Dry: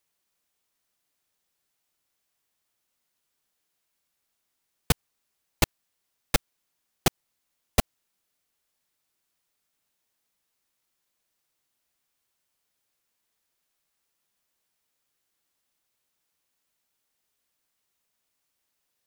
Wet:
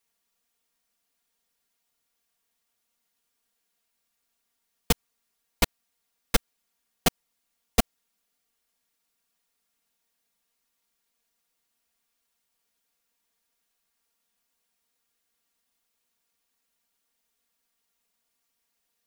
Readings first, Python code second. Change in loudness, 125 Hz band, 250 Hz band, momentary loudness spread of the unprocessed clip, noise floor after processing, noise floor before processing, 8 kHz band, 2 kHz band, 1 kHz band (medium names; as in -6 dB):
0.0 dB, -3.5 dB, +1.5 dB, 0 LU, -79 dBFS, -79 dBFS, +0.5 dB, 0.0 dB, +0.5 dB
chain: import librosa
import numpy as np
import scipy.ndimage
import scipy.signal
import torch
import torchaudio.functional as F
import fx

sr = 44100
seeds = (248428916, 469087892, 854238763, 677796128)

y = x + 0.89 * np.pad(x, (int(4.3 * sr / 1000.0), 0))[:len(x)]
y = y * 10.0 ** (-2.0 / 20.0)